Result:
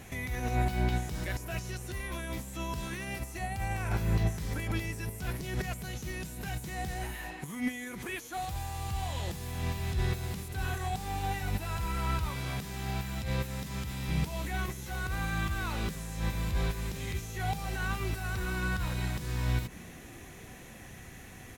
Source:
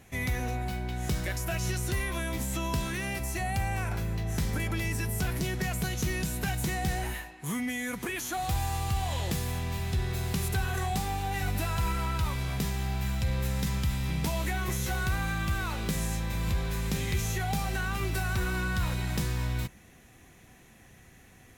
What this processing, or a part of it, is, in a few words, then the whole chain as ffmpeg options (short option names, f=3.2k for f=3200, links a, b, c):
de-esser from a sidechain: -filter_complex "[0:a]asplit=2[a][b];[b]highpass=f=5k:w=0.5412,highpass=f=5k:w=1.3066,apad=whole_len=951543[c];[a][c]sidechaincompress=threshold=-52dB:ratio=8:attack=0.81:release=93,asettb=1/sr,asplit=3[d][e][f];[d]atrim=end=12.294[g];[e]atrim=start=12.29:end=14.09,asetpts=PTS-STARTPTS,afade=t=in:d=0.004:c=qsin,afade=t=out:st=1.796:d=0.004:c=qsin,highpass=f=110:p=1[h];[f]atrim=start=14.086[i];[g][h]acrossfade=d=0.004:c1=hsin:c2=qsin[j];[j][i]acrossfade=d=0.004:c1=qsin:c2=hsin,asplit=5[k][l][m][n][o];[l]adelay=294,afreqshift=110,volume=-23.5dB[p];[m]adelay=588,afreqshift=220,volume=-27.7dB[q];[n]adelay=882,afreqshift=330,volume=-31.8dB[r];[o]adelay=1176,afreqshift=440,volume=-36dB[s];[k][p][q][r][s]amix=inputs=5:normalize=0,volume=7dB"